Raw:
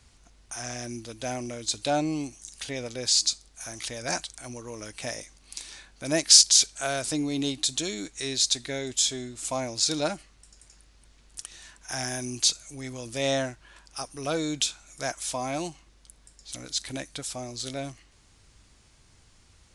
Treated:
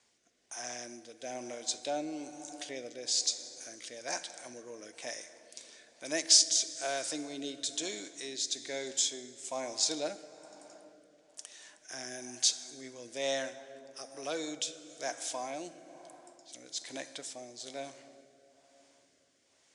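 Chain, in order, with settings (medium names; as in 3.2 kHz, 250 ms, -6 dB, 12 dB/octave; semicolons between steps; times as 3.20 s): cabinet simulation 380–8700 Hz, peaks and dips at 1.3 kHz -6 dB, 2.6 kHz -3 dB, 4.2 kHz -4 dB; plate-style reverb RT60 4.1 s, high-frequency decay 0.45×, DRR 10.5 dB; rotary cabinet horn 1.1 Hz; trim -3 dB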